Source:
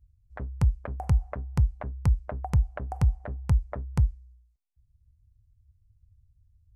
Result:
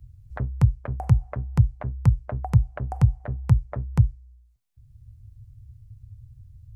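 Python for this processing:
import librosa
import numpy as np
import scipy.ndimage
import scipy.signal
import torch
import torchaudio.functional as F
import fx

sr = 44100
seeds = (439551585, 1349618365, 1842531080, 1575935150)

y = fx.peak_eq(x, sr, hz=120.0, db=13.0, octaves=0.56)
y = fx.band_squash(y, sr, depth_pct=40)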